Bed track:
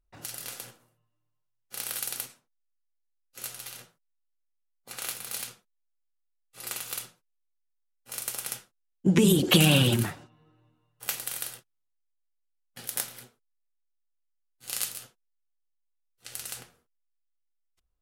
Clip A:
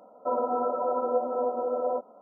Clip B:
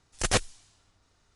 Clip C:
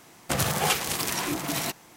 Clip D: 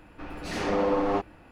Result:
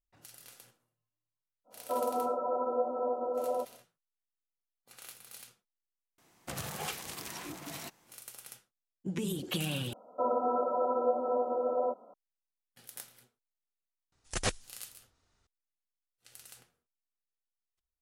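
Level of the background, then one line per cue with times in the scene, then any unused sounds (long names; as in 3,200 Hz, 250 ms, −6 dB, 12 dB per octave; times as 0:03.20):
bed track −14.5 dB
0:01.64: mix in A −4.5 dB, fades 0.10 s
0:06.18: mix in C −14 dB
0:09.93: overwrite with A −2.5 dB
0:14.12: mix in B −7 dB
not used: D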